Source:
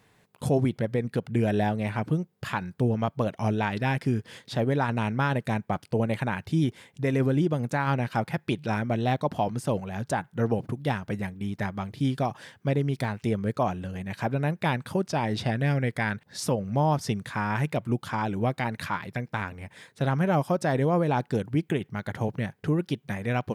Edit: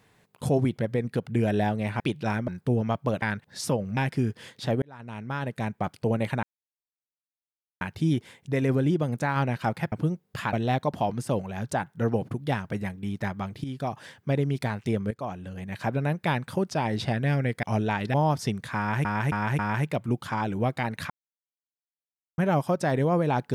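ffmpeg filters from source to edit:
-filter_complex "[0:a]asplit=18[a][b][c][d][e][f][g][h][i][j][k][l][m][n][o][p][q][r];[a]atrim=end=2.002[s];[b]atrim=start=8.428:end=8.912[t];[c]atrim=start=2.608:end=3.352[u];[d]atrim=start=16.008:end=16.762[v];[e]atrim=start=3.858:end=4.71,asetpts=PTS-STARTPTS,afade=t=out:st=0.848:d=0.004:c=hsin[w];[f]atrim=start=4.71:end=6.32,asetpts=PTS-STARTPTS,afade=t=in:d=1.1,afade=t=out:st=1.606:d=0.004:c=hsin,apad=pad_dur=1.38[x];[g]atrim=start=6.32:end=8.432,asetpts=PTS-STARTPTS,afade=t=in:d=0.004:c=hsin[y];[h]atrim=start=1.998:end=2.612[z];[i]atrim=start=8.908:end=12.02,asetpts=PTS-STARTPTS,afade=t=out:st=3.108:d=0.004:c=hsin:silence=0.237137[aa];[j]atrim=start=12.02:end=13.49,asetpts=PTS-STARTPTS,afade=t=in:d=0.37:silence=0.237137,afade=t=out:st=1.466:d=0.004:c=hsin:silence=0.251189[ab];[k]atrim=start=13.49:end=16.012,asetpts=PTS-STARTPTS,afade=t=in:d=0.7:silence=0.251189[ac];[l]atrim=start=3.348:end=3.862[ad];[m]atrim=start=16.758:end=17.672[ae];[n]atrim=start=17.398:end=17.672[af];[o]atrim=start=17.398:end=17.672[ag];[p]atrim=start=17.398:end=18.91,asetpts=PTS-STARTPTS,afade=t=out:st=1.508:d=0.004:c=hsin[ah];[q]atrim=start=18.91:end=20.19,asetpts=PTS-STARTPTS,volume=0[ai];[r]atrim=start=20.19,asetpts=PTS-STARTPTS,afade=t=in:d=0.004:c=hsin[aj];[s][t]acrossfade=d=0.004:c1=hsin:c2=hsin[ak];[ak][u]acrossfade=d=0.004:c1=hsin:c2=hsin[al];[al][v]acrossfade=d=0.004:c1=hsin:c2=hsin[am];[w][x][y]concat=n=3:v=0:a=1[an];[am][an]acrossfade=d=0.004:c1=hsin:c2=hsin[ao];[ao][z]acrossfade=d=0.004:c1=hsin:c2=hsin[ap];[aa][ab][ac]concat=n=3:v=0:a=1[aq];[ap][aq]acrossfade=d=0.004:c1=hsin:c2=hsin[ar];[ar][ad]acrossfade=d=0.004:c1=hsin:c2=hsin[as];[as][ae]acrossfade=d=0.004:c1=hsin:c2=hsin[at];[at][af]acrossfade=d=0.004:c1=hsin:c2=hsin[au];[au][ag]acrossfade=d=0.004:c1=hsin:c2=hsin[av];[ah][ai][aj]concat=n=3:v=0:a=1[aw];[av][aw]acrossfade=d=0.004:c1=hsin:c2=hsin"

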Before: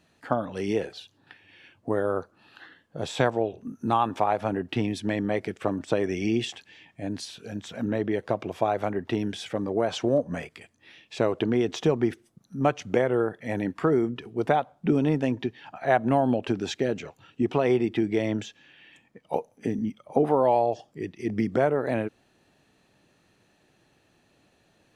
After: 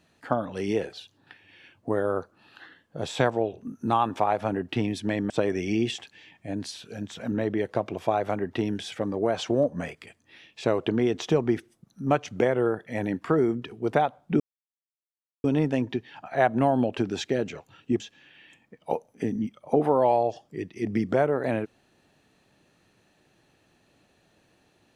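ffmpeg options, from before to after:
-filter_complex "[0:a]asplit=4[a][b][c][d];[a]atrim=end=5.302[e];[b]atrim=start=5.838:end=14.94,asetpts=PTS-STARTPTS,afade=t=out:st=9.098:d=0.004:c=hsin,apad=pad_dur=1.04[f];[c]atrim=start=14.94:end=17.502,asetpts=PTS-STARTPTS,afade=t=in:d=0.004:c=hsin[g];[d]atrim=start=18.428[h];[f][g]concat=n=2:v=0:a=1[i];[e][i]acrossfade=d=0.004:c1=hsin:c2=hsin[j];[j][h]acrossfade=d=0.004:c1=hsin:c2=hsin"

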